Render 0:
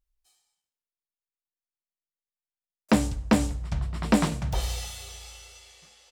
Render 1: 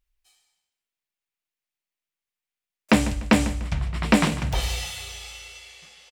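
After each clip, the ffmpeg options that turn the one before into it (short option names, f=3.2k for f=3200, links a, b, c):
-af "equalizer=f=2.4k:w=1.2:g=7.5,aecho=1:1:148|296|444:0.178|0.0605|0.0206,volume=2.5dB"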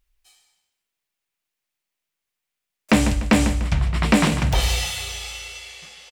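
-filter_complex "[0:a]asplit=2[a][b];[b]alimiter=limit=-14dB:level=0:latency=1:release=142,volume=1dB[c];[a][c]amix=inputs=2:normalize=0,asoftclip=type=tanh:threshold=-5.5dB"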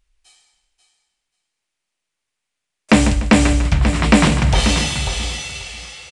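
-af "aecho=1:1:537|1074|1611:0.376|0.0639|0.0109,aresample=22050,aresample=44100,volume=4.5dB"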